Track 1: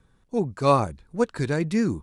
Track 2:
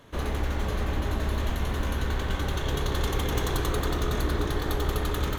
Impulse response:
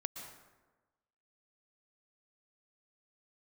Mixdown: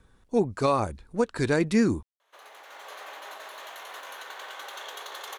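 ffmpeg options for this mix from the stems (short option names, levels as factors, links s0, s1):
-filter_complex "[0:a]equalizer=f=150:w=2:g=-7,alimiter=limit=0.168:level=0:latency=1:release=208,volume=1.41,asplit=2[s0][s1];[1:a]acompressor=threshold=0.0447:ratio=6,highpass=f=610:w=0.5412,highpass=f=610:w=1.3066,adelay=2200,volume=0.944[s2];[s1]apad=whole_len=334618[s3];[s2][s3]sidechaincompress=threshold=0.0141:ratio=10:attack=16:release=861[s4];[s0][s4]amix=inputs=2:normalize=0"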